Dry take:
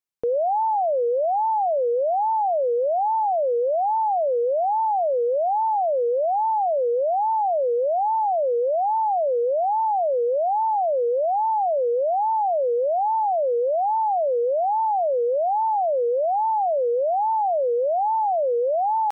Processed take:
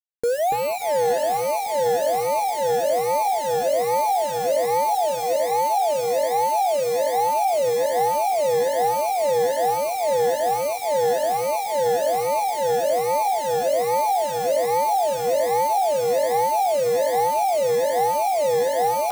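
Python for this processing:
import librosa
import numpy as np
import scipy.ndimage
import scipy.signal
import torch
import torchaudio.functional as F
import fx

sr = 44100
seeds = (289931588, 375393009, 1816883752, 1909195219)

y = fx.rider(x, sr, range_db=3, speed_s=2.0)
y = fx.quant_companded(y, sr, bits=4)
y = fx.highpass(y, sr, hz=470.0, slope=24, at=(4.94, 7.29))
y = fx.echo_alternate(y, sr, ms=286, hz=820.0, feedback_pct=50, wet_db=-2.0)
y = 10.0 ** (-16.0 / 20.0) * np.tanh(y / 10.0 ** (-16.0 / 20.0))
y = fx.notch_cascade(y, sr, direction='falling', hz=1.3)
y = y * 10.0 ** (3.0 / 20.0)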